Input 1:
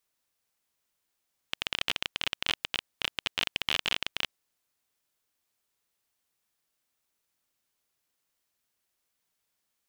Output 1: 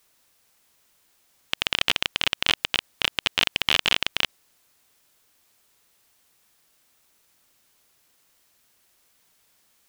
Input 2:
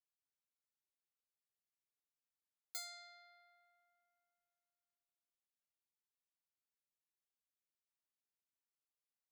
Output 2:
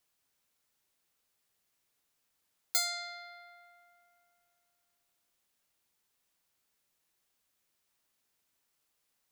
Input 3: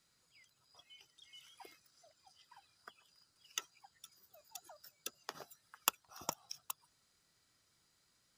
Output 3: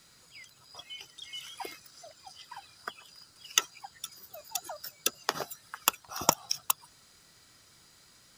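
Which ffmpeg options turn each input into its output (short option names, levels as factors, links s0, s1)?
-af "alimiter=level_in=7.08:limit=0.891:release=50:level=0:latency=1,volume=0.891"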